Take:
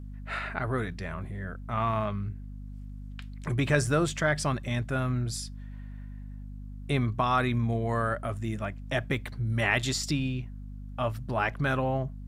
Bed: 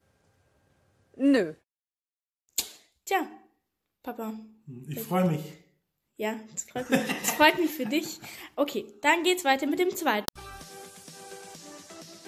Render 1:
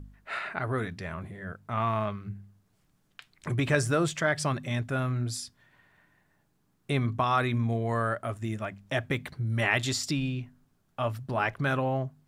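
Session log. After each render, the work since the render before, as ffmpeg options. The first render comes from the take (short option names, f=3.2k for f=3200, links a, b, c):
-af "bandreject=f=50:t=h:w=4,bandreject=f=100:t=h:w=4,bandreject=f=150:t=h:w=4,bandreject=f=200:t=h:w=4,bandreject=f=250:t=h:w=4"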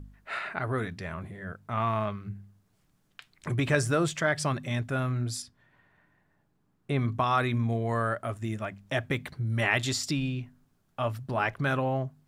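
-filter_complex "[0:a]asettb=1/sr,asplit=3[a][b][c];[a]atrim=end=5.424[d];[b]atrim=start=5.42:end=6.99,asetpts=PTS-STARTPTS,afade=t=in:d=0.004:c=qsin,afade=t=out:st=1.566:d=0.004:c=qsin,highshelf=f=3k:g=-10[e];[c]atrim=start=6.986[f];[d][e]acrossfade=d=0.004:c1=hsin:c2=qsin[g];[g][f]acrossfade=d=0.004:c1=qsin:c2=hsin"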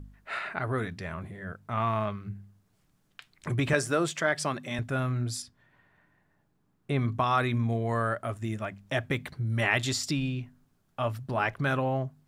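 -filter_complex "[0:a]asettb=1/sr,asplit=3[a][b][c];[a]atrim=end=3.734[d];[b]atrim=start=3.73:end=4.79,asetpts=PTS-STARTPTS,afade=t=in:d=0.004:c=qsin,afade=t=out:st=1.056:d=0.004:c=qsin,highpass=200[e];[c]atrim=start=4.786[f];[d][e]acrossfade=d=0.004:c1=hsin:c2=qsin[g];[g][f]acrossfade=d=0.004:c1=qsin:c2=hsin"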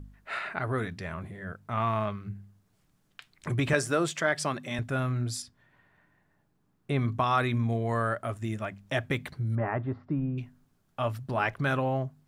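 -filter_complex "[0:a]asettb=1/sr,asplit=3[a][b][c];[a]atrim=end=9.554[d];[b]atrim=start=9.55:end=10.38,asetpts=PTS-STARTPTS,afade=t=in:d=0.004:c=qsin,afade=t=out:st=0.826:d=0.004:c=qsin,lowpass=f=1.3k:w=0.5412,lowpass=f=1.3k:w=1.3066[e];[c]atrim=start=10.376[f];[d][e]acrossfade=d=0.004:c1=hsin:c2=qsin[g];[g][f]acrossfade=d=0.004:c1=qsin:c2=hsin"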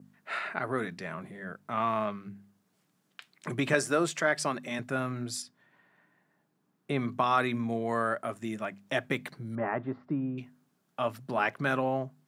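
-af "highpass=f=160:w=0.5412,highpass=f=160:w=1.3066,adynamicequalizer=threshold=0.00141:dfrequency=3300:dqfactor=5.2:tfrequency=3300:tqfactor=5.2:attack=5:release=100:ratio=0.375:range=2.5:mode=cutabove:tftype=bell"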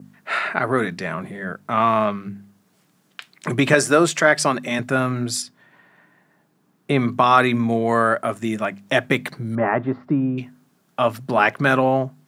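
-af "volume=11.5dB,alimiter=limit=-2dB:level=0:latency=1"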